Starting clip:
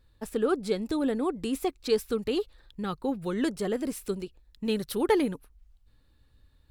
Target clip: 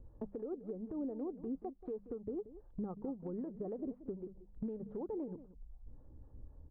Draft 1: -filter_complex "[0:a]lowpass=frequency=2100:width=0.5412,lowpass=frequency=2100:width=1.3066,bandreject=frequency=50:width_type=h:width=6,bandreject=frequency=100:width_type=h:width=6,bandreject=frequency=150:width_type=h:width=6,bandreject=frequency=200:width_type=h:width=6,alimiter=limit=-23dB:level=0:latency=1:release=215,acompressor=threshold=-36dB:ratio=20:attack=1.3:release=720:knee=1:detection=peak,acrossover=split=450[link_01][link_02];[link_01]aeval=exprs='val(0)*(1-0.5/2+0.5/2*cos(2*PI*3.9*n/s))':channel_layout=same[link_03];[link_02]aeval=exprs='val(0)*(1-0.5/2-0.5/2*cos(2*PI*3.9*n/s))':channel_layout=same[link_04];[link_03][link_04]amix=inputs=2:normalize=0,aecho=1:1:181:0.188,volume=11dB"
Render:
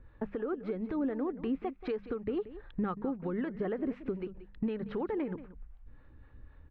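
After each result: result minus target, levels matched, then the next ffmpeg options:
downward compressor: peak gain reduction −7.5 dB; 1,000 Hz band +4.0 dB
-filter_complex "[0:a]lowpass=frequency=2100:width=0.5412,lowpass=frequency=2100:width=1.3066,bandreject=frequency=50:width_type=h:width=6,bandreject=frequency=100:width_type=h:width=6,bandreject=frequency=150:width_type=h:width=6,bandreject=frequency=200:width_type=h:width=6,alimiter=limit=-23dB:level=0:latency=1:release=215,acompressor=threshold=-44dB:ratio=20:attack=1.3:release=720:knee=1:detection=peak,acrossover=split=450[link_01][link_02];[link_01]aeval=exprs='val(0)*(1-0.5/2+0.5/2*cos(2*PI*3.9*n/s))':channel_layout=same[link_03];[link_02]aeval=exprs='val(0)*(1-0.5/2-0.5/2*cos(2*PI*3.9*n/s))':channel_layout=same[link_04];[link_03][link_04]amix=inputs=2:normalize=0,aecho=1:1:181:0.188,volume=11dB"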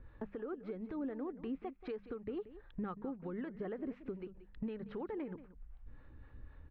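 1,000 Hz band +4.0 dB
-filter_complex "[0:a]lowpass=frequency=810:width=0.5412,lowpass=frequency=810:width=1.3066,bandreject=frequency=50:width_type=h:width=6,bandreject=frequency=100:width_type=h:width=6,bandreject=frequency=150:width_type=h:width=6,bandreject=frequency=200:width_type=h:width=6,alimiter=limit=-23dB:level=0:latency=1:release=215,acompressor=threshold=-44dB:ratio=20:attack=1.3:release=720:knee=1:detection=peak,acrossover=split=450[link_01][link_02];[link_01]aeval=exprs='val(0)*(1-0.5/2+0.5/2*cos(2*PI*3.9*n/s))':channel_layout=same[link_03];[link_02]aeval=exprs='val(0)*(1-0.5/2-0.5/2*cos(2*PI*3.9*n/s))':channel_layout=same[link_04];[link_03][link_04]amix=inputs=2:normalize=0,aecho=1:1:181:0.188,volume=11dB"

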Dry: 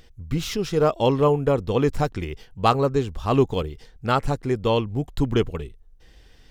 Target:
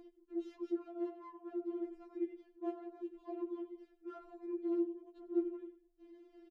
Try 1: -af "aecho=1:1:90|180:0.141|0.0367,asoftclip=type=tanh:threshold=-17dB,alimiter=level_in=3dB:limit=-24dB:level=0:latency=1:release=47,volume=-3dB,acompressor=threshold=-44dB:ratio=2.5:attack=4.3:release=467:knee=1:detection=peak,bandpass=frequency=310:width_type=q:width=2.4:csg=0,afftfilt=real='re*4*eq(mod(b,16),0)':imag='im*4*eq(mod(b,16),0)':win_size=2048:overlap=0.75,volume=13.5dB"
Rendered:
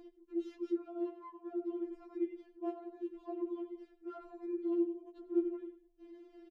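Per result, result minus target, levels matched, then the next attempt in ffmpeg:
downward compressor: peak gain reduction −4 dB; soft clipping: distortion −5 dB
-af "aecho=1:1:90|180:0.141|0.0367,asoftclip=type=tanh:threshold=-17dB,alimiter=level_in=3dB:limit=-24dB:level=0:latency=1:release=47,volume=-3dB,acompressor=threshold=-50.5dB:ratio=2.5:attack=4.3:release=467:knee=1:detection=peak,bandpass=frequency=310:width_type=q:width=2.4:csg=0,afftfilt=real='re*4*eq(mod(b,16),0)':imag='im*4*eq(mod(b,16),0)':win_size=2048:overlap=0.75,volume=13.5dB"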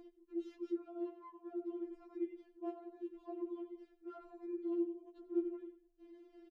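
soft clipping: distortion −5 dB
-af "aecho=1:1:90|180:0.141|0.0367,asoftclip=type=tanh:threshold=-23.5dB,alimiter=level_in=3dB:limit=-24dB:level=0:latency=1:release=47,volume=-3dB,acompressor=threshold=-50.5dB:ratio=2.5:attack=4.3:release=467:knee=1:detection=peak,bandpass=frequency=310:width_type=q:width=2.4:csg=0,afftfilt=real='re*4*eq(mod(b,16),0)':imag='im*4*eq(mod(b,16),0)':win_size=2048:overlap=0.75,volume=13.5dB"

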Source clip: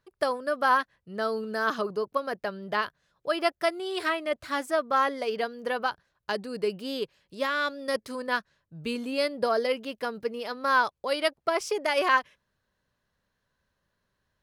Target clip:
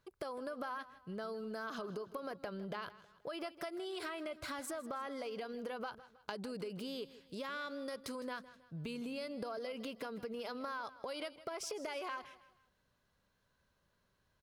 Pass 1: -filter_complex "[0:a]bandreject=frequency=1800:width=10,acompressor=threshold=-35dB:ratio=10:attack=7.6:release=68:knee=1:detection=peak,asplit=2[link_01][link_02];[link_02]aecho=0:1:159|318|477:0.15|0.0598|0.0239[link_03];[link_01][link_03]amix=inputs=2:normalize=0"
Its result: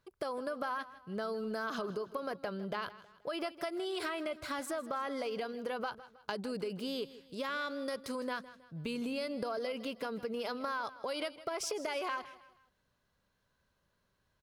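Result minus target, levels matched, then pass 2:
downward compressor: peak gain reduction −5.5 dB
-filter_complex "[0:a]bandreject=frequency=1800:width=10,acompressor=threshold=-41dB:ratio=10:attack=7.6:release=68:knee=1:detection=peak,asplit=2[link_01][link_02];[link_02]aecho=0:1:159|318|477:0.15|0.0598|0.0239[link_03];[link_01][link_03]amix=inputs=2:normalize=0"

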